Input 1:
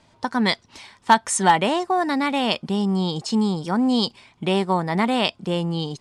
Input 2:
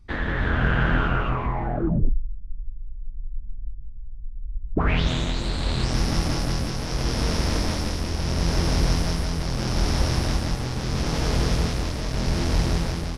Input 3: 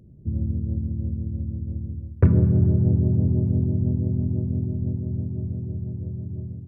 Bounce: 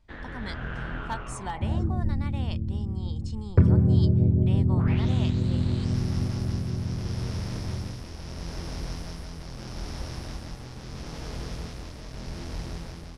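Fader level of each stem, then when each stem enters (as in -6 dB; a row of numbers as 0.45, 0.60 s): -19.0, -13.0, -1.5 dB; 0.00, 0.00, 1.35 s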